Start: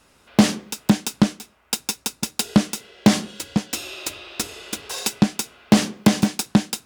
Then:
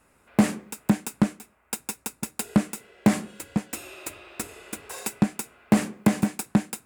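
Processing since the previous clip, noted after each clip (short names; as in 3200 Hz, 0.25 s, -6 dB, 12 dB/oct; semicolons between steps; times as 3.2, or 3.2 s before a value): band shelf 4300 Hz -10 dB 1.3 oct; gain -4.5 dB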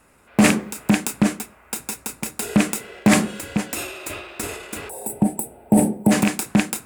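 rattling part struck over -29 dBFS, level -17 dBFS; spectral gain 4.89–6.11, 940–7700 Hz -20 dB; transient shaper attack -4 dB, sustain +8 dB; gain +6 dB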